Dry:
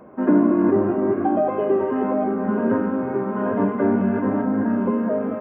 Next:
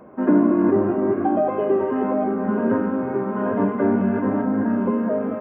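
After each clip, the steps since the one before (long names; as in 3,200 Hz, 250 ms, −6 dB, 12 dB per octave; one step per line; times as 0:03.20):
no processing that can be heard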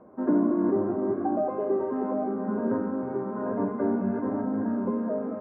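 low-pass filter 1,300 Hz 12 dB per octave
mains-hum notches 50/100/150/200 Hz
level −6.5 dB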